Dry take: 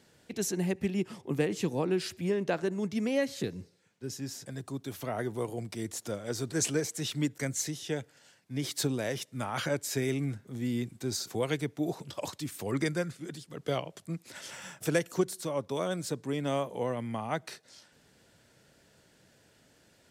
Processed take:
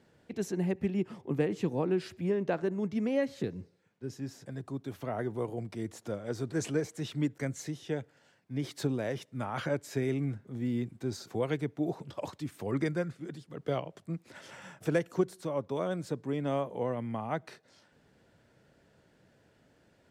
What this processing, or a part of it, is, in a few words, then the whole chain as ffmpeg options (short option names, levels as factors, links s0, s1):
through cloth: -af "highshelf=f=3200:g=-14.5"